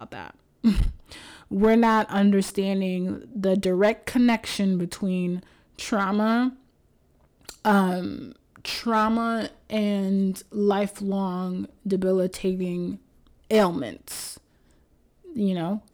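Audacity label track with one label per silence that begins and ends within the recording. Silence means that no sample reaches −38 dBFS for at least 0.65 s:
6.520000	7.480000	silence
14.370000	15.280000	silence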